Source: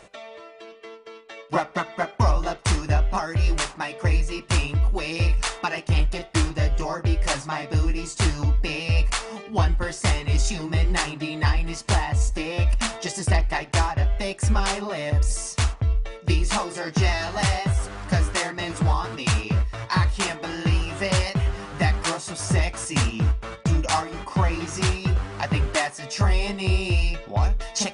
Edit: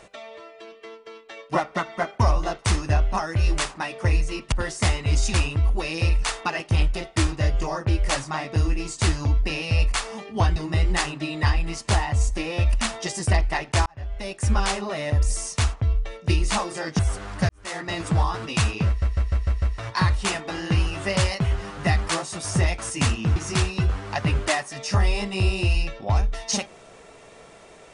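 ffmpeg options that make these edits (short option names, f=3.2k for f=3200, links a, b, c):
-filter_complex "[0:a]asplit=13[a][b][c][d][e][f][g][h][i][j][k][l][m];[a]atrim=end=4.522[n];[b]atrim=start=9.738:end=10.562[o];[c]atrim=start=4.518:end=9.742[p];[d]atrim=start=10.558:end=13.86,asetpts=PTS-STARTPTS,afade=t=out:st=3.298:d=0.004:c=hsin[q];[e]atrim=start=13.86:end=16.992,asetpts=PTS-STARTPTS,afade=t=in:d=0.68[r];[f]atrim=start=17.688:end=18.19,asetpts=PTS-STARTPTS,afade=t=out:st=0.498:d=0.004:c=hsin[s];[g]atrim=start=18.19:end=19.722,asetpts=PTS-STARTPTS,afade=t=in:d=0.33:c=qua[t];[h]atrim=start=19.568:end=19.722[u];[i]atrim=start=19.568:end=19.722[v];[j]atrim=start=19.568:end=19.722[w];[k]atrim=start=19.568:end=19.722[x];[l]atrim=start=19.568:end=23.312[y];[m]atrim=start=24.628[z];[n][o]acrossfade=d=0.004:c1=hsin:c2=hsin[aa];[aa][p]acrossfade=d=0.004:c1=hsin:c2=hsin[ab];[q][r]concat=n=2:v=0:a=1[ac];[ab][ac]acrossfade=d=0.004:c1=hsin:c2=hsin[ad];[s][t]concat=n=2:v=0:a=1[ae];[ad][ae]acrossfade=d=0.004:c1=hsin:c2=hsin[af];[af][u]acrossfade=d=0.004:c1=hsin:c2=hsin[ag];[ag][v]acrossfade=d=0.004:c1=hsin:c2=hsin[ah];[ah][w]acrossfade=d=0.004:c1=hsin:c2=hsin[ai];[ai][x]acrossfade=d=0.004:c1=hsin:c2=hsin[aj];[aj][y]acrossfade=d=0.004:c1=hsin:c2=hsin[ak];[ak][z]acrossfade=d=0.004:c1=hsin:c2=hsin"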